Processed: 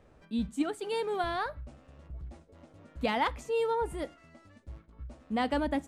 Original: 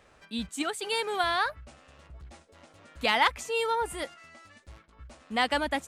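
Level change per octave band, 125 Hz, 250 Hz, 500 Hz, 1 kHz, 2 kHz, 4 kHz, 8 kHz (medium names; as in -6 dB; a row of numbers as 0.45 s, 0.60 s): +4.5 dB, +3.5 dB, +0.5 dB, -4.5 dB, -9.0 dB, -10.5 dB, -11.5 dB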